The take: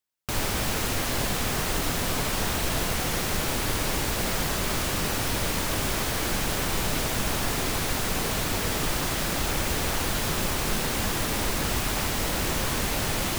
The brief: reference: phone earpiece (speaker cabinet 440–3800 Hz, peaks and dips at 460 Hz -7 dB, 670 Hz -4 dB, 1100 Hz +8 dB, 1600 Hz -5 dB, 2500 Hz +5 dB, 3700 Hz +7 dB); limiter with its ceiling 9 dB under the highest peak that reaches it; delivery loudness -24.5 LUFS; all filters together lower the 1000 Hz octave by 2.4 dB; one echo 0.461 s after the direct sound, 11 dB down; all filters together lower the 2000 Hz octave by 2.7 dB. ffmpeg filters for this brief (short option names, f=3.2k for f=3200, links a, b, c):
-af "equalizer=f=1k:t=o:g=-5,equalizer=f=2k:t=o:g=-4,alimiter=limit=-23dB:level=0:latency=1,highpass=440,equalizer=f=460:t=q:w=4:g=-7,equalizer=f=670:t=q:w=4:g=-4,equalizer=f=1.1k:t=q:w=4:g=8,equalizer=f=1.6k:t=q:w=4:g=-5,equalizer=f=2.5k:t=q:w=4:g=5,equalizer=f=3.7k:t=q:w=4:g=7,lowpass=f=3.8k:w=0.5412,lowpass=f=3.8k:w=1.3066,aecho=1:1:461:0.282,volume=11dB"